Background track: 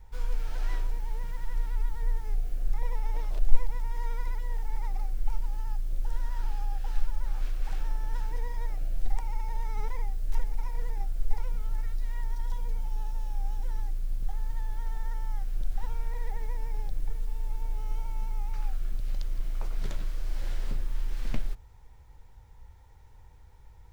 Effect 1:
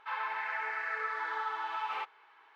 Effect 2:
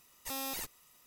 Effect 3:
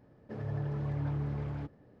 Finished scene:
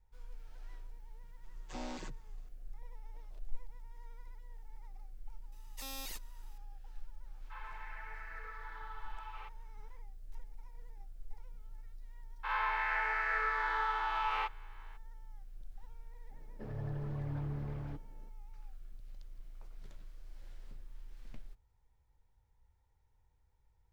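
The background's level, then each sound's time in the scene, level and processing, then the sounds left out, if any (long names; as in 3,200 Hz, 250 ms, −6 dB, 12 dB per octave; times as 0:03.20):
background track −19.5 dB
0:01.43: mix in 2 −2.5 dB + channel vocoder with a chord as carrier major triad, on B2
0:05.52: mix in 2 −9 dB + parametric band 3,900 Hz +6 dB 1.9 octaves
0:07.44: mix in 1 −13.5 dB
0:12.43: mix in 1 −0.5 dB, fades 0.02 s + peak hold with a rise ahead of every peak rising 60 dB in 0.98 s
0:16.30: mix in 3 −5 dB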